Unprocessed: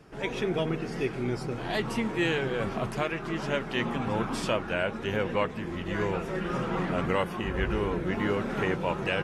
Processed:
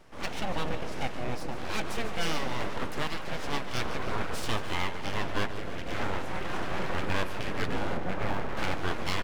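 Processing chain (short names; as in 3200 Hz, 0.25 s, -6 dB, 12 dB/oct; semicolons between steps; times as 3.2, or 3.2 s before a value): 7.97–8.57 LPF 1800 Hz; full-wave rectifier; tapped delay 0.142/0.152/0.299 s -14.5/-17/-15.5 dB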